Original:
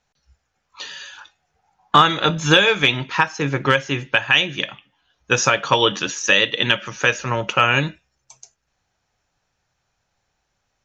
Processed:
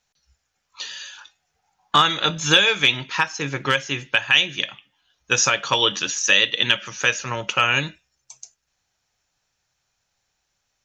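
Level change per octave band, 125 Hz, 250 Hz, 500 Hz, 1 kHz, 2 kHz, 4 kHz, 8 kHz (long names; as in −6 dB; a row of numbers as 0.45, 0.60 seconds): −6.5, −6.5, −6.0, −4.5, −1.5, +1.0, +3.0 decibels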